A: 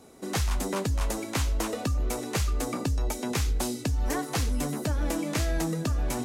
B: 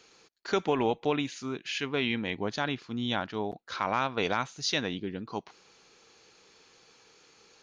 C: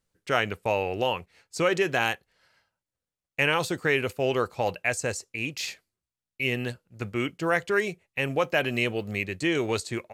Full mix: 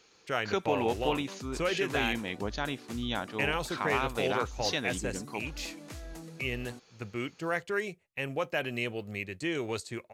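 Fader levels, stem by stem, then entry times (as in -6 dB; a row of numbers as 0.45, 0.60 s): -16.5, -3.0, -7.0 dB; 0.55, 0.00, 0.00 s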